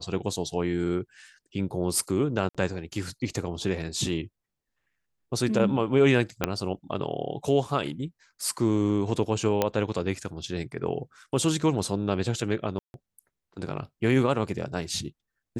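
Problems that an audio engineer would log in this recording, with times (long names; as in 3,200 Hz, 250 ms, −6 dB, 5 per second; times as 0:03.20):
0:02.49–0:02.55: drop-out 56 ms
0:06.44: click −8 dBFS
0:09.62: click −9 dBFS
0:12.79–0:12.94: drop-out 151 ms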